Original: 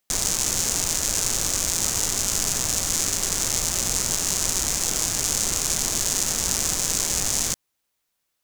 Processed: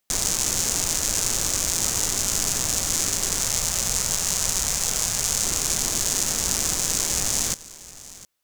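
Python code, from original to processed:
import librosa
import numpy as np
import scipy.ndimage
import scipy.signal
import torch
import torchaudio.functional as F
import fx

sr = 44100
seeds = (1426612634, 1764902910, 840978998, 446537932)

y = fx.peak_eq(x, sr, hz=310.0, db=-9.5, octaves=0.5, at=(3.4, 5.44))
y = y + 10.0 ** (-18.5 / 20.0) * np.pad(y, (int(709 * sr / 1000.0), 0))[:len(y)]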